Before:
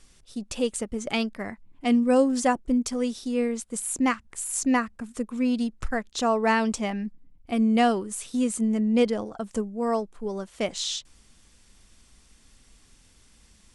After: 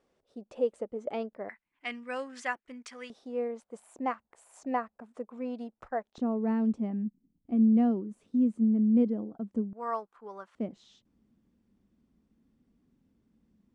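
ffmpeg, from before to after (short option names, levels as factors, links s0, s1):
-af "asetnsamples=n=441:p=0,asendcmd='1.49 bandpass f 1900;3.1 bandpass f 680;6.18 bandpass f 240;9.73 bandpass f 1200;10.55 bandpass f 230',bandpass=f=540:t=q:w=1.9:csg=0"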